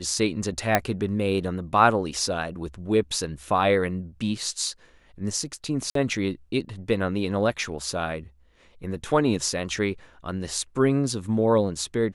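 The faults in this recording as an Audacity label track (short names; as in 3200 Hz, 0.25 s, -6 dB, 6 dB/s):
0.750000	0.750000	pop -4 dBFS
5.900000	5.950000	gap 53 ms
7.640000	7.640000	gap 2 ms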